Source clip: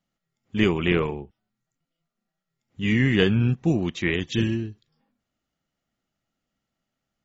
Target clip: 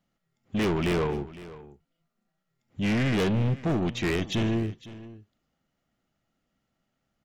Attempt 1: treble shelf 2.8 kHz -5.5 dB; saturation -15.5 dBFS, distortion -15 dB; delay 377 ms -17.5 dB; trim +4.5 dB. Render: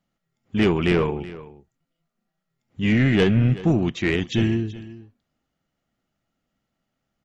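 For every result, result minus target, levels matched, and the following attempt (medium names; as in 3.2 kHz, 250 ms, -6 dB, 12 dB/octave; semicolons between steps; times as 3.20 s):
saturation: distortion -9 dB; echo 131 ms early
treble shelf 2.8 kHz -5.5 dB; saturation -27 dBFS, distortion -6 dB; delay 377 ms -17.5 dB; trim +4.5 dB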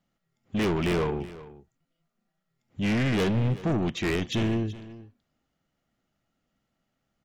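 echo 131 ms early
treble shelf 2.8 kHz -5.5 dB; saturation -27 dBFS, distortion -6 dB; delay 508 ms -17.5 dB; trim +4.5 dB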